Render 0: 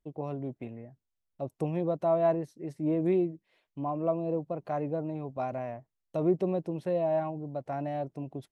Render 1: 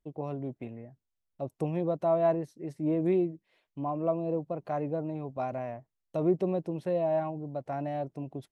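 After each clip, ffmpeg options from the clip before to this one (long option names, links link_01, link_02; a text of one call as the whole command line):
ffmpeg -i in.wav -af anull out.wav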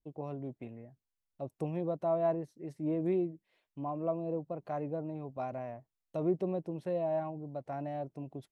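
ffmpeg -i in.wav -af "adynamicequalizer=threshold=0.00708:dfrequency=1500:dqfactor=0.7:tfrequency=1500:tqfactor=0.7:attack=5:release=100:ratio=0.375:range=2:mode=cutabove:tftype=highshelf,volume=-4.5dB" out.wav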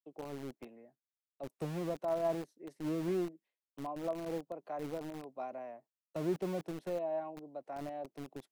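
ffmpeg -i in.wav -filter_complex "[0:a]agate=range=-33dB:threshold=-53dB:ratio=3:detection=peak,acrossover=split=220|360|840[link_01][link_02][link_03][link_04];[link_01]acrusher=bits=6:mix=0:aa=0.000001[link_05];[link_05][link_02][link_03][link_04]amix=inputs=4:normalize=0,volume=-3.5dB" out.wav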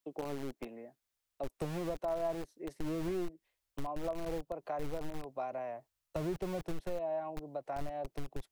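ffmpeg -i in.wav -af "asubboost=boost=12:cutoff=66,acompressor=threshold=-46dB:ratio=2.5,volume=9dB" out.wav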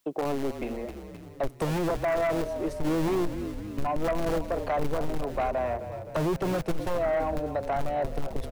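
ffmpeg -i in.wav -filter_complex "[0:a]asplit=8[link_01][link_02][link_03][link_04][link_05][link_06][link_07][link_08];[link_02]adelay=260,afreqshift=-33,volume=-12dB[link_09];[link_03]adelay=520,afreqshift=-66,volume=-16.3dB[link_10];[link_04]adelay=780,afreqshift=-99,volume=-20.6dB[link_11];[link_05]adelay=1040,afreqshift=-132,volume=-24.9dB[link_12];[link_06]adelay=1300,afreqshift=-165,volume=-29.2dB[link_13];[link_07]adelay=1560,afreqshift=-198,volume=-33.5dB[link_14];[link_08]adelay=1820,afreqshift=-231,volume=-37.8dB[link_15];[link_01][link_09][link_10][link_11][link_12][link_13][link_14][link_15]amix=inputs=8:normalize=0,aeval=exprs='0.075*sin(PI/2*2.82*val(0)/0.075)':channel_layout=same" out.wav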